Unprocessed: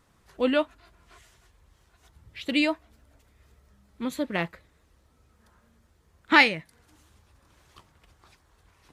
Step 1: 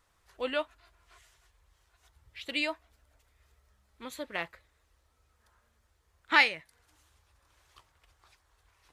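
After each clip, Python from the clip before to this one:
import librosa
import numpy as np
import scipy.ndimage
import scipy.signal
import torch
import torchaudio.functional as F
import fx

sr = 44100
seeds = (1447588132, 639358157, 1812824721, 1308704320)

y = fx.peak_eq(x, sr, hz=200.0, db=-14.5, octaves=1.8)
y = y * librosa.db_to_amplitude(-4.0)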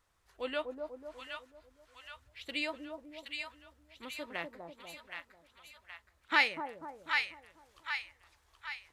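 y = fx.echo_split(x, sr, split_hz=920.0, low_ms=246, high_ms=771, feedback_pct=52, wet_db=-4.0)
y = y * librosa.db_to_amplitude(-4.5)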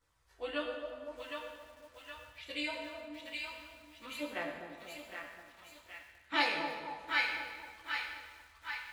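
y = fx.chorus_voices(x, sr, voices=2, hz=0.46, base_ms=15, depth_ms=1.4, mix_pct=65)
y = fx.rev_fdn(y, sr, rt60_s=1.6, lf_ratio=0.8, hf_ratio=0.85, size_ms=61.0, drr_db=0.5)
y = fx.echo_crushed(y, sr, ms=763, feedback_pct=35, bits=9, wet_db=-10.5)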